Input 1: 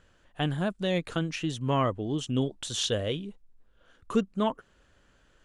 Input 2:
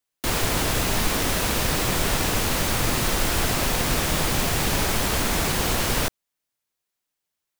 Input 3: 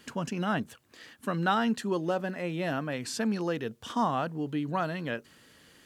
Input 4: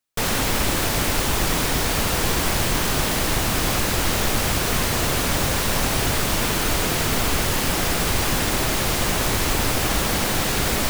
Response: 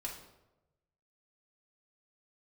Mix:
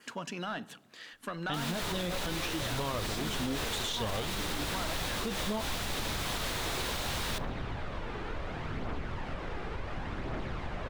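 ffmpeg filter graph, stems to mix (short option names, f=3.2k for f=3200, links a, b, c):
-filter_complex "[0:a]agate=range=-33dB:threshold=-55dB:ratio=3:detection=peak,flanger=delay=8.9:depth=2.7:regen=46:speed=0.65:shape=sinusoidal,adelay=1100,volume=0.5dB[a];[1:a]adelay=1300,volume=-13.5dB,asplit=2[b][c];[c]volume=-16dB[d];[2:a]volume=-11dB,asplit=2[e][f];[f]volume=-7.5dB[g];[3:a]lowpass=1.9k,acompressor=threshold=-23dB:ratio=6,aphaser=in_gain=1:out_gain=1:delay=2.6:decay=0.34:speed=0.69:type=triangular,adelay=1650,volume=-11.5dB[h];[b][e]amix=inputs=2:normalize=0,asplit=2[i][j];[j]highpass=f=720:p=1,volume=18dB,asoftclip=type=tanh:threshold=-21dB[k];[i][k]amix=inputs=2:normalize=0,lowpass=f=6.2k:p=1,volume=-6dB,acompressor=threshold=-35dB:ratio=6,volume=0dB[l];[4:a]atrim=start_sample=2205[m];[d][g]amix=inputs=2:normalize=0[n];[n][m]afir=irnorm=-1:irlink=0[o];[a][h][l][o]amix=inputs=4:normalize=0,adynamicequalizer=threshold=0.00158:dfrequency=3700:dqfactor=3.4:tfrequency=3700:tqfactor=3.4:attack=5:release=100:ratio=0.375:range=3:mode=boostabove:tftype=bell,alimiter=level_in=0.5dB:limit=-24dB:level=0:latency=1:release=69,volume=-0.5dB"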